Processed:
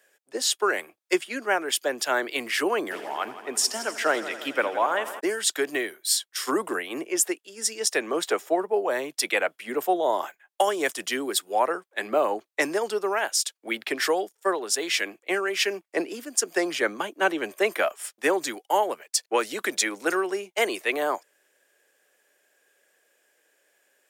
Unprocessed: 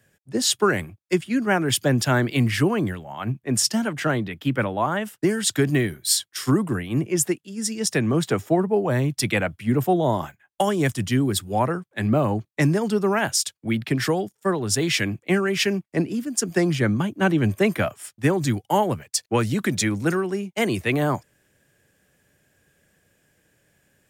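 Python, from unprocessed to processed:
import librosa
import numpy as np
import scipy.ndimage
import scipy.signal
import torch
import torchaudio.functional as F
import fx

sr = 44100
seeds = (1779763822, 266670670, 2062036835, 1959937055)

y = scipy.signal.sosfilt(scipy.signal.butter(4, 400.0, 'highpass', fs=sr, output='sos'), x)
y = fx.rider(y, sr, range_db=4, speed_s=0.5)
y = fx.echo_heads(y, sr, ms=83, heads='first and second', feedback_pct=66, wet_db=-17.0, at=(2.9, 5.19), fade=0.02)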